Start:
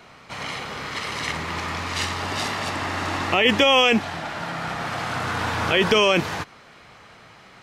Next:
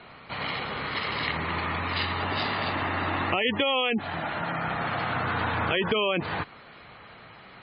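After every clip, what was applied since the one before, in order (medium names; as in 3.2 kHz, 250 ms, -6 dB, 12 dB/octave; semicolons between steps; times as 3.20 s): steep low-pass 4.8 kHz 48 dB/octave; spectral gate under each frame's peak -20 dB strong; compression 3:1, threshold -24 dBFS, peak gain reduction 9 dB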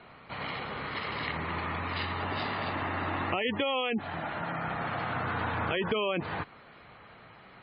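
treble shelf 4.2 kHz -10 dB; trim -3.5 dB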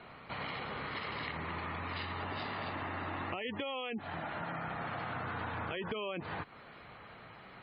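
compression 3:1, threshold -38 dBFS, peak gain reduction 10 dB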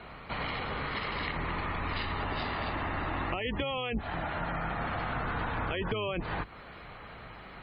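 octave divider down 2 oct, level 0 dB; trim +5 dB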